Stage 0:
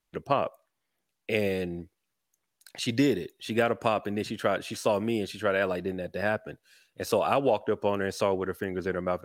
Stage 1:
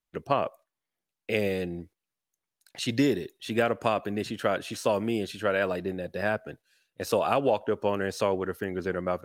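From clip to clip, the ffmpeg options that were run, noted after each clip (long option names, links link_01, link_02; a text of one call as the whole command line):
ffmpeg -i in.wav -af "agate=range=-8dB:threshold=-49dB:ratio=16:detection=peak" out.wav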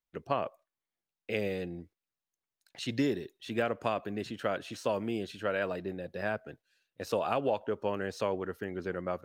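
ffmpeg -i in.wav -af "equalizer=frequency=11000:width=0.93:gain=-7,volume=-5.5dB" out.wav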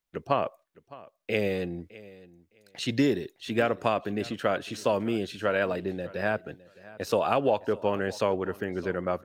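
ffmpeg -i in.wav -af "aecho=1:1:611|1222:0.1|0.018,volume=5.5dB" out.wav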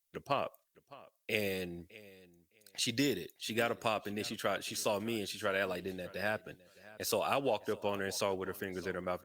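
ffmpeg -i in.wav -af "crystalizer=i=4.5:c=0,volume=-9dB" -ar 48000 -c:a libopus -b:a 64k out.opus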